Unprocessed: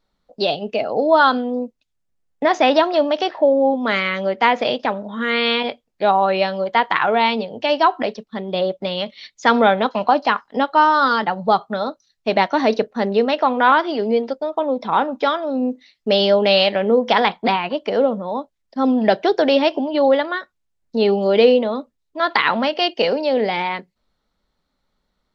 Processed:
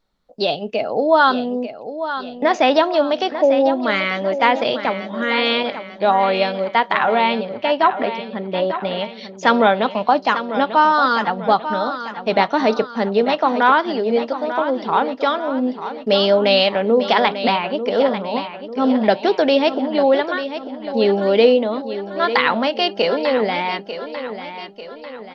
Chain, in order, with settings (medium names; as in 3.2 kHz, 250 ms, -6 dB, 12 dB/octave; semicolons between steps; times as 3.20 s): 7.21–9.05 s: low-pass 3.2 kHz 12 dB/octave; on a send: feedback delay 894 ms, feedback 49%, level -11 dB